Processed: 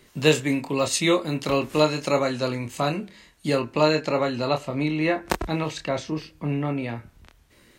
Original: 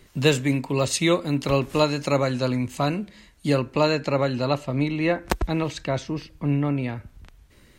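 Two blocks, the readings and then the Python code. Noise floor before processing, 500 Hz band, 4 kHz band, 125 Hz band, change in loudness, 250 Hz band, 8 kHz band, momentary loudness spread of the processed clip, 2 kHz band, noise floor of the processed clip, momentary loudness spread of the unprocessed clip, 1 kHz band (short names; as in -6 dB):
-55 dBFS, +0.5 dB, +1.0 dB, -4.0 dB, -0.5 dB, -1.0 dB, +1.0 dB, 9 LU, +1.0 dB, -57 dBFS, 7 LU, +0.5 dB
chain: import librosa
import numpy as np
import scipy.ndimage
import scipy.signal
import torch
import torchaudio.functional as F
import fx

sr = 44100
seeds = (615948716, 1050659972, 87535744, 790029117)

y = fx.low_shelf(x, sr, hz=110.0, db=-10.5)
y = fx.doubler(y, sr, ms=26.0, db=-6)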